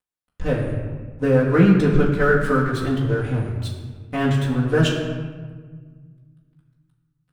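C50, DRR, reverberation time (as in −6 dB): 4.0 dB, −5.5 dB, 1.5 s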